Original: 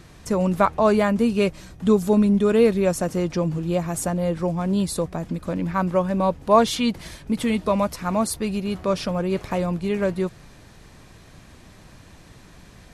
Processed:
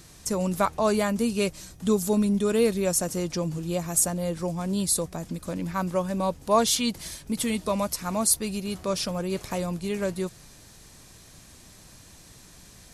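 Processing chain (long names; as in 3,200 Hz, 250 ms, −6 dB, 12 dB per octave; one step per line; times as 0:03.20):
bass and treble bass 0 dB, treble +14 dB
level −5.5 dB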